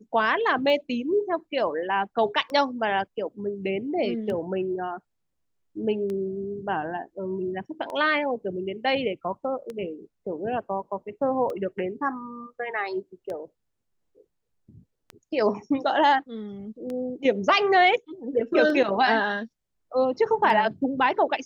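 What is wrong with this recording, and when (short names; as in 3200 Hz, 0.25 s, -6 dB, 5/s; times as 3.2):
tick 33 1/3 rpm -22 dBFS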